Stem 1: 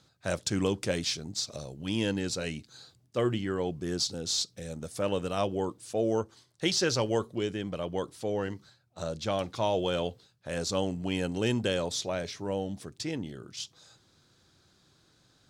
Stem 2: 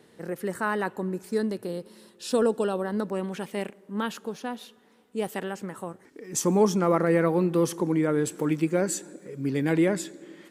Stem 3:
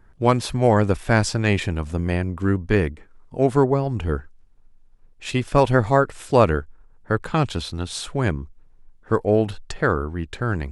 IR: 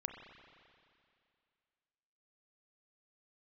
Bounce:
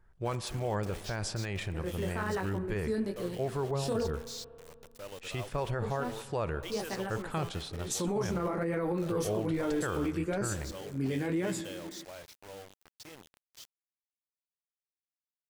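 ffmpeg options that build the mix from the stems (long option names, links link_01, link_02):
-filter_complex "[0:a]equalizer=frequency=210:width=1.2:gain=-10.5,acrusher=bits=5:mix=0:aa=0.000001,volume=-13.5dB[link_01];[1:a]flanger=delay=16:depth=6.9:speed=1.1,adelay=1550,volume=-4dB,asplit=3[link_02][link_03][link_04];[link_02]atrim=end=4.07,asetpts=PTS-STARTPTS,afade=type=out:start_time=4.066:duration=0.004:curve=hsin[link_05];[link_03]atrim=start=4.07:end=5.82,asetpts=PTS-STARTPTS,volume=0[link_06];[link_04]atrim=start=5.82,asetpts=PTS-STARTPTS,afade=type=in:duration=0.004:curve=hsin[link_07];[link_05][link_06][link_07]concat=n=3:v=0:a=1,asplit=2[link_08][link_09];[link_09]volume=-8dB[link_10];[2:a]equalizer=frequency=260:width_type=o:width=0.35:gain=-10.5,volume=-12.5dB,asplit=2[link_11][link_12];[link_12]volume=-9.5dB[link_13];[3:a]atrim=start_sample=2205[link_14];[link_10][link_13]amix=inputs=2:normalize=0[link_15];[link_15][link_14]afir=irnorm=-1:irlink=0[link_16];[link_01][link_08][link_11][link_16]amix=inputs=4:normalize=0,alimiter=limit=-23.5dB:level=0:latency=1:release=26"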